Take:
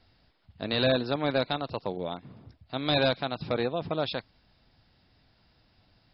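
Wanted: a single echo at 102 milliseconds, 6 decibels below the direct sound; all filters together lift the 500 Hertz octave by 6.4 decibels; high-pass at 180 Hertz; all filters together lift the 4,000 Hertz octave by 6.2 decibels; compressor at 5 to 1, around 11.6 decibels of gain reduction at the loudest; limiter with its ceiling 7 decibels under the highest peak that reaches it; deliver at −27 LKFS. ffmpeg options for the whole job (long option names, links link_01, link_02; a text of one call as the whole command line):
ffmpeg -i in.wav -af "highpass=180,equalizer=frequency=500:width_type=o:gain=7.5,equalizer=frequency=4000:width_type=o:gain=6.5,acompressor=threshold=-28dB:ratio=5,alimiter=limit=-22dB:level=0:latency=1,aecho=1:1:102:0.501,volume=6.5dB" out.wav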